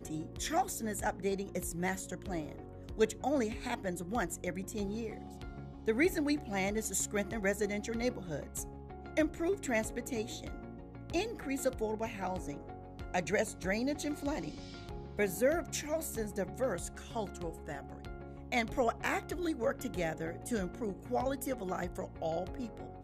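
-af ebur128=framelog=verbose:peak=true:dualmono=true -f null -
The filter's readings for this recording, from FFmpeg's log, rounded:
Integrated loudness:
  I:         -33.0 LUFS
  Threshold: -43.3 LUFS
Loudness range:
  LRA:         2.9 LU
  Threshold: -53.2 LUFS
  LRA low:   -34.4 LUFS
  LRA high:  -31.5 LUFS
True peak:
  Peak:      -16.2 dBFS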